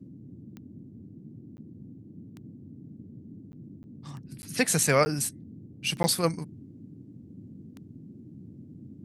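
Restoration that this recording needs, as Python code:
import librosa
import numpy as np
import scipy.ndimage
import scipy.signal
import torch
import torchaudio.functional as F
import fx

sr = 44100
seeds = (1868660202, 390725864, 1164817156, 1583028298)

y = fx.fix_declick_ar(x, sr, threshold=10.0)
y = fx.fix_interpolate(y, sr, at_s=(1.57, 3.52, 3.83, 4.42, 5.05, 6.03), length_ms=10.0)
y = fx.noise_reduce(y, sr, print_start_s=6.88, print_end_s=7.38, reduce_db=26.0)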